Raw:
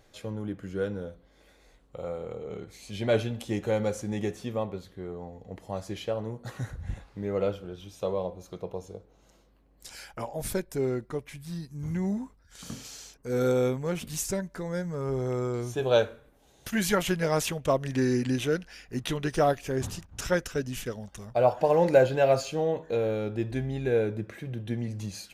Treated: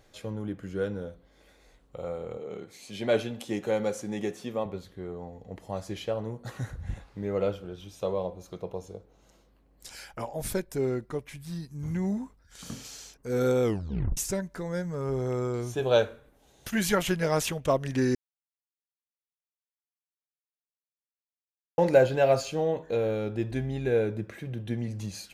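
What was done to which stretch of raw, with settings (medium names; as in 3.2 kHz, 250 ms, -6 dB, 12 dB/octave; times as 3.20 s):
2.37–4.66 s: high-pass 170 Hz
13.63 s: tape stop 0.54 s
18.15–21.78 s: mute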